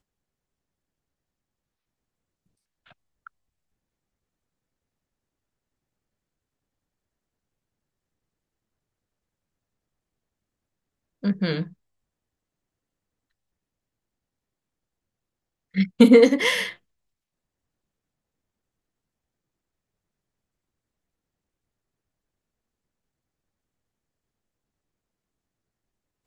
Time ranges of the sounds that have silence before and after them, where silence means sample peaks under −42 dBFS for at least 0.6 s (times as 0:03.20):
0:02.91–0:03.27
0:11.23–0:11.73
0:15.74–0:16.75